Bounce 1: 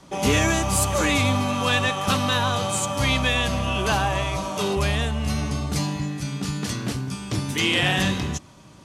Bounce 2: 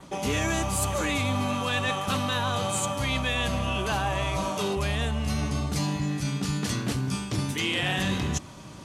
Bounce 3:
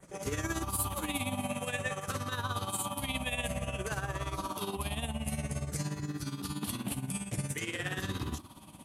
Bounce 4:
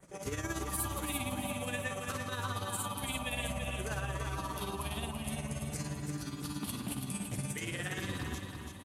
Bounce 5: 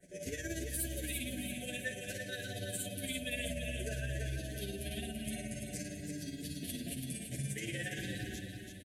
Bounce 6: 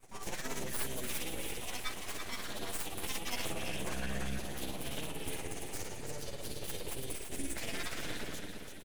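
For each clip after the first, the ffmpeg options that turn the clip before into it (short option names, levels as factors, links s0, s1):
-af "adynamicequalizer=threshold=0.00631:dfrequency=5300:dqfactor=3:tfrequency=5300:tqfactor=3:attack=5:release=100:ratio=0.375:range=2:mode=cutabove:tftype=bell,areverse,acompressor=threshold=0.0316:ratio=4,areverse,volume=1.68"
-af "afftfilt=real='re*pow(10,9/40*sin(2*PI*(0.53*log(max(b,1)*sr/1024/100)/log(2)-(-0.53)*(pts-256)/sr)))':imag='im*pow(10,9/40*sin(2*PI*(0.53*log(max(b,1)*sr/1024/100)/log(2)-(-0.53)*(pts-256)/sr)))':win_size=1024:overlap=0.75,tremolo=f=17:d=0.69,highshelf=f=7700:t=q:w=1.5:g=8.5,volume=0.501"
-af "aecho=1:1:334|668|1002|1336|1670:0.501|0.21|0.0884|0.0371|0.0156,volume=0.708"
-filter_complex "[0:a]bandreject=f=50:t=h:w=6,bandreject=f=100:t=h:w=6,bandreject=f=150:t=h:w=6,afftfilt=real='re*(1-between(b*sr/4096,740,1500))':imag='im*(1-between(b*sr/4096,740,1500))':win_size=4096:overlap=0.75,asplit=2[s0][s1];[s1]adelay=8.2,afreqshift=-0.32[s2];[s0][s2]amix=inputs=2:normalize=1,volume=1.19"
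-af "aeval=exprs='abs(val(0))':c=same,volume=1.5"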